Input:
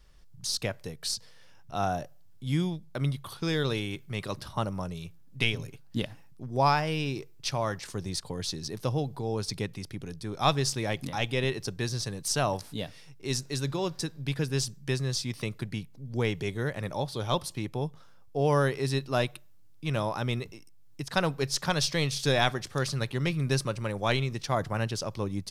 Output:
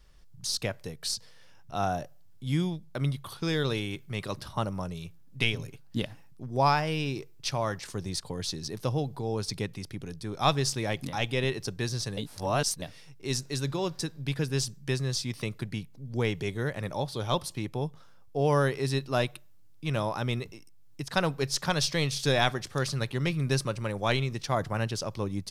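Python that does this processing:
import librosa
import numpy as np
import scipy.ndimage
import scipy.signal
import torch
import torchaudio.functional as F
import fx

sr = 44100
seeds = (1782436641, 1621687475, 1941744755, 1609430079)

y = fx.edit(x, sr, fx.reverse_span(start_s=12.17, length_s=0.65), tone=tone)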